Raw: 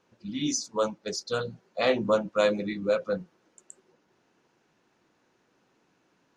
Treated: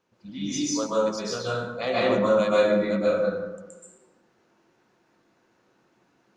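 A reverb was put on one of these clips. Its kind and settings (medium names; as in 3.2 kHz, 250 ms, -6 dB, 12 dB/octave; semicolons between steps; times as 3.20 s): plate-style reverb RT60 1.1 s, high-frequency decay 0.5×, pre-delay 115 ms, DRR -7.5 dB; trim -5 dB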